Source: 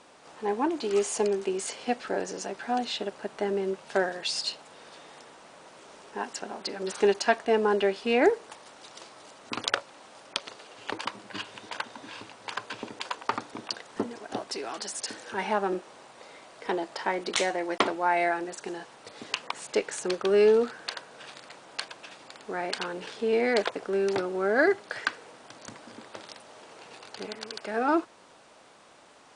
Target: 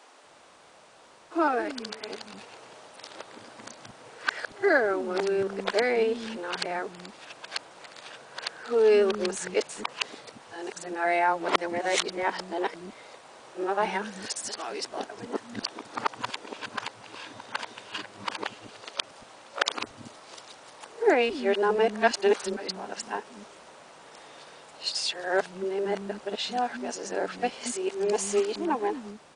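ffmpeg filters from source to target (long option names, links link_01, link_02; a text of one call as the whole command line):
ffmpeg -i in.wav -filter_complex "[0:a]areverse,acrossover=split=250[link_01][link_02];[link_01]adelay=230[link_03];[link_03][link_02]amix=inputs=2:normalize=0,volume=1dB" out.wav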